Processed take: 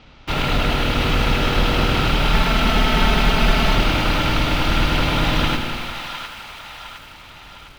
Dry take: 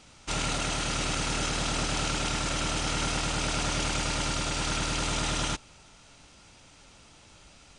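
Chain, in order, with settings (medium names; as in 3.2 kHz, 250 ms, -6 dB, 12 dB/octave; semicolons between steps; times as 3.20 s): octave divider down 2 oct, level +2 dB; low-pass 3.9 kHz 24 dB/octave; in parallel at -11.5 dB: word length cut 6-bit, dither none; 2.33–3.75 s: on the sum: comb 4.6 ms, depth 73%; on a send: two-band feedback delay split 730 Hz, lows 157 ms, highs 709 ms, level -8 dB; on the sum: bit-crushed delay 83 ms, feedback 80%, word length 8-bit, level -10 dB; trim +7 dB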